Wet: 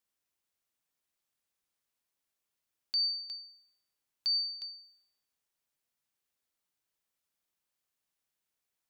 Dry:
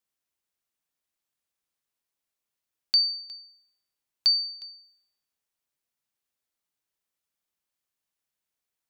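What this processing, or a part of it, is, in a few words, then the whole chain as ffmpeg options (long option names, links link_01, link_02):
stacked limiters: -af "alimiter=limit=-18.5dB:level=0:latency=1:release=377,alimiter=level_in=1.5dB:limit=-24dB:level=0:latency=1,volume=-1.5dB"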